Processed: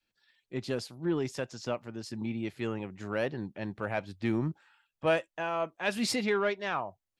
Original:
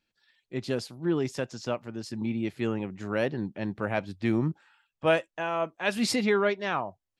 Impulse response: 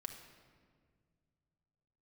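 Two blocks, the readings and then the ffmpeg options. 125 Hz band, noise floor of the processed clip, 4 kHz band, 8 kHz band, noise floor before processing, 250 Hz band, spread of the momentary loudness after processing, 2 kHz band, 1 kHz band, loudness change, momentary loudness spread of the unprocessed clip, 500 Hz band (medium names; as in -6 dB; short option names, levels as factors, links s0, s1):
-4.0 dB, under -85 dBFS, -2.5 dB, -2.0 dB, -85 dBFS, -4.5 dB, 9 LU, -3.0 dB, -3.0 dB, -3.5 dB, 8 LU, -3.5 dB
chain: -filter_complex "[0:a]adynamicequalizer=threshold=0.01:dfrequency=220:dqfactor=0.76:tfrequency=220:tqfactor=0.76:attack=5:release=100:ratio=0.375:range=2.5:mode=cutabove:tftype=bell,asplit=2[s0][s1];[s1]asoftclip=type=tanh:threshold=0.0944,volume=0.708[s2];[s0][s2]amix=inputs=2:normalize=0,volume=0.473"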